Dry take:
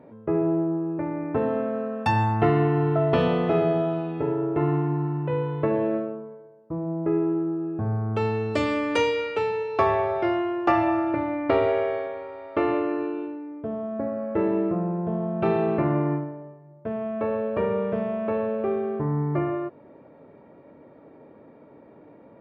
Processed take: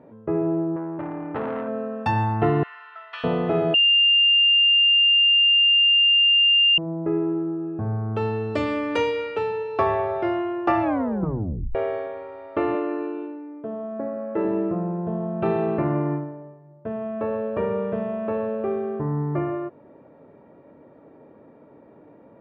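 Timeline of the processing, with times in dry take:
0.76–1.68 s: transformer saturation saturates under 990 Hz
2.63–3.24 s: high-pass 1.4 kHz 24 dB/octave
3.74–6.78 s: bleep 2.8 kHz -11.5 dBFS
10.82 s: tape stop 0.93 s
12.75–14.45 s: high-pass 200 Hz
whole clip: treble shelf 5.6 kHz -11 dB; band-stop 2.2 kHz, Q 21

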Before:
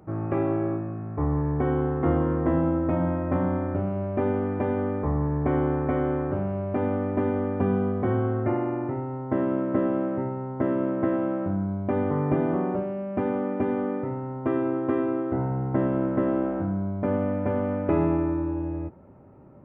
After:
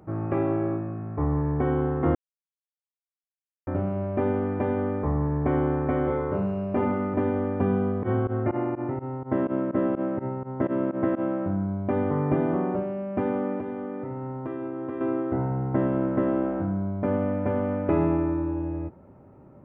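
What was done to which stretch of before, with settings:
2.15–3.67 s: mute
6.05–7.14 s: flutter echo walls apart 4.3 m, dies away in 0.53 s
8.03–11.21 s: volume shaper 125 bpm, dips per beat 2, -23 dB, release 74 ms
13.59–15.01 s: compression, threshold -29 dBFS

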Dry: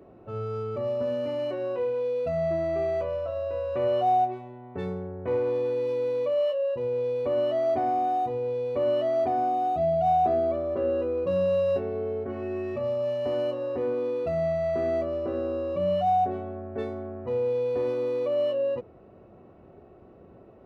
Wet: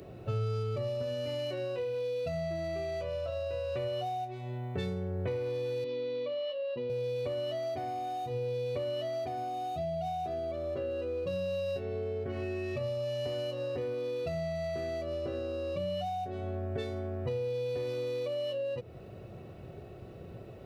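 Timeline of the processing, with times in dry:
5.84–6.90 s: cabinet simulation 230–3900 Hz, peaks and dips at 250 Hz +9 dB, 540 Hz -5 dB, 830 Hz -5 dB, 1.6 kHz -7 dB, 2.6 kHz -5 dB
whole clip: treble shelf 3.2 kHz +12 dB; compression, threshold -36 dBFS; graphic EQ 125/250/1000/4000 Hz +8/-7/-8/+4 dB; trim +5.5 dB

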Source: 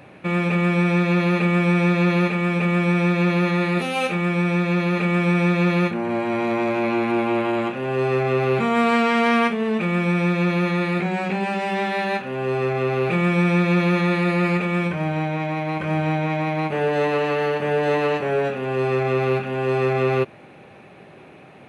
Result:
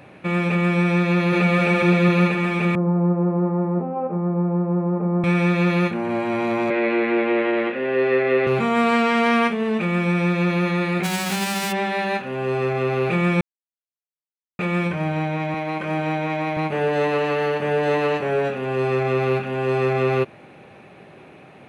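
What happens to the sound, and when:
1.06–1.56 s: echo throw 260 ms, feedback 75%, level -1 dB
2.75–5.24 s: elliptic band-pass 150–1000 Hz, stop band 60 dB
6.70–8.47 s: cabinet simulation 260–4200 Hz, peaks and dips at 280 Hz +5 dB, 480 Hz +9 dB, 790 Hz -5 dB, 1.1 kHz -4 dB, 1.9 kHz +10 dB
11.03–11.71 s: formants flattened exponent 0.3
13.41–14.59 s: mute
15.54–16.57 s: high-pass 190 Hz

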